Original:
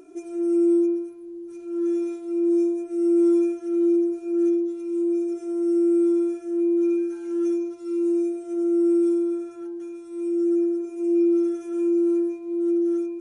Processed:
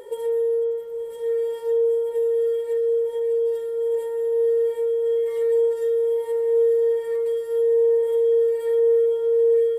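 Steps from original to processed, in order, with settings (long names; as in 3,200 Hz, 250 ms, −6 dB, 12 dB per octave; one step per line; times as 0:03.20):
dynamic equaliser 5,400 Hz, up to −4 dB, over −51 dBFS, Q 0.77
downward compressor, threshold −28 dBFS, peak gain reduction 11 dB
on a send: feedback delay with all-pass diffusion 1,372 ms, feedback 59%, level −8.5 dB
on the sum: wrong playback speed 33 rpm record played at 45 rpm
level +7 dB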